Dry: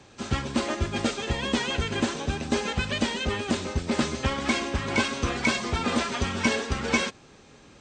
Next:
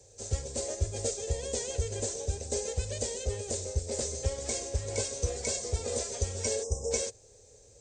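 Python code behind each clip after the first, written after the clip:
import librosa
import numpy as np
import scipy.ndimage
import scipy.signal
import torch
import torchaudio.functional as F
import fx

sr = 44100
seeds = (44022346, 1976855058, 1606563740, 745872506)

y = fx.spec_erase(x, sr, start_s=6.64, length_s=0.27, low_hz=1200.0, high_hz=5000.0)
y = fx.curve_eq(y, sr, hz=(110.0, 160.0, 320.0, 470.0, 1200.0, 1900.0, 3000.0, 7100.0, 11000.0), db=(0, -19, -17, 4, -24, -16, -17, 9, 6))
y = y * librosa.db_to_amplitude(-1.5)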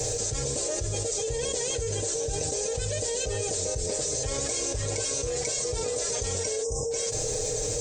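y = x + 0.73 * np.pad(x, (int(6.5 * sr / 1000.0), 0))[:len(x)]
y = fx.env_flatten(y, sr, amount_pct=100)
y = y * librosa.db_to_amplitude(-5.0)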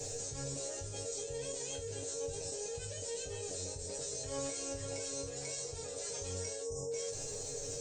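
y = fx.resonator_bank(x, sr, root=42, chord='fifth', decay_s=0.22)
y = y * librosa.db_to_amplitude(-2.0)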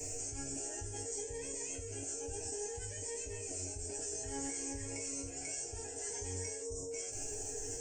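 y = fx.fixed_phaser(x, sr, hz=790.0, stages=8)
y = fx.notch_cascade(y, sr, direction='rising', hz=0.59)
y = y * librosa.db_to_amplitude(4.5)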